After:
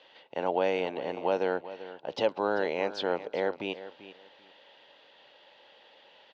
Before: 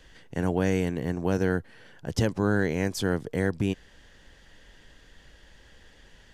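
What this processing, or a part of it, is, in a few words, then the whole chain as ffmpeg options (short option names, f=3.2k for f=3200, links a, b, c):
phone earpiece: -af "highpass=62,highpass=480,equalizer=f=570:t=q:w=4:g=8,equalizer=f=860:t=q:w=4:g=8,equalizer=f=1.7k:t=q:w=4:g=-8,equalizer=f=2.7k:t=q:w=4:g=5,equalizer=f=3.9k:t=q:w=4:g=6,lowpass=f=4.3k:w=0.5412,lowpass=f=4.3k:w=1.3066,highshelf=f=6.2k:g=-6,aecho=1:1:390|780:0.188|0.0377"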